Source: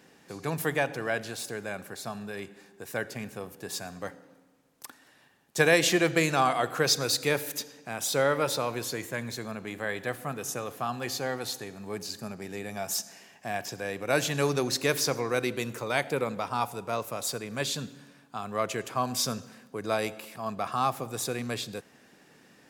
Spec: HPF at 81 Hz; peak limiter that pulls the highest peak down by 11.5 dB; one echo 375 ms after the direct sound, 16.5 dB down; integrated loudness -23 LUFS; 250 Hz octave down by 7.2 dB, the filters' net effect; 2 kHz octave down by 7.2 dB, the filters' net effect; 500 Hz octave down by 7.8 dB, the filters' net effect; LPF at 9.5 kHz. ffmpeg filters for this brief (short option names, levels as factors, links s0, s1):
-af "highpass=81,lowpass=9500,equalizer=f=250:t=o:g=-7.5,equalizer=f=500:t=o:g=-7,equalizer=f=2000:t=o:g=-9,alimiter=limit=0.0631:level=0:latency=1,aecho=1:1:375:0.15,volume=5.31"